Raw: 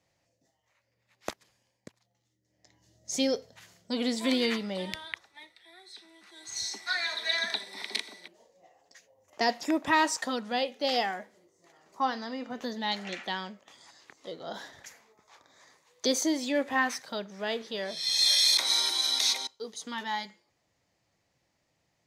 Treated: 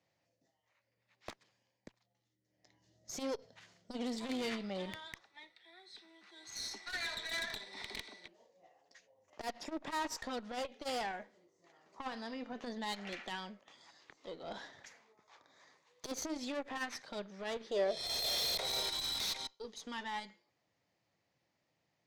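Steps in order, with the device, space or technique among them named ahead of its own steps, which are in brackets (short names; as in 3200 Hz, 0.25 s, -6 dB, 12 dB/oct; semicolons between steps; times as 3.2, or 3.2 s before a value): valve radio (BPF 100–5400 Hz; tube stage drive 30 dB, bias 0.55; core saturation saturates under 290 Hz); 17.71–18.89 band shelf 530 Hz +10.5 dB 1.2 oct; gain -2.5 dB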